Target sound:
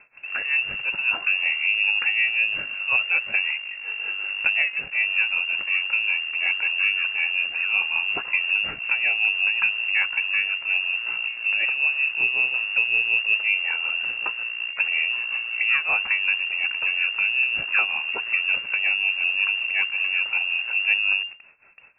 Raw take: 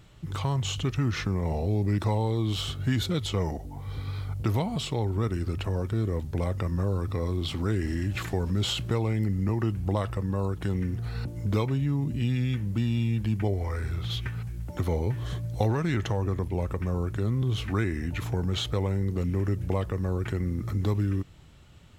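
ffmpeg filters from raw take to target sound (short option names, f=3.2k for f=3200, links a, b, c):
-filter_complex "[0:a]acrossover=split=120[a][b];[a]acrusher=bits=5:dc=4:mix=0:aa=0.000001[c];[b]tremolo=f=5.4:d=0.85[d];[c][d]amix=inputs=2:normalize=0,lowpass=f=2.4k:t=q:w=0.5098,lowpass=f=2.4k:t=q:w=0.6013,lowpass=f=2.4k:t=q:w=0.9,lowpass=f=2.4k:t=q:w=2.563,afreqshift=-2800,volume=7.5dB"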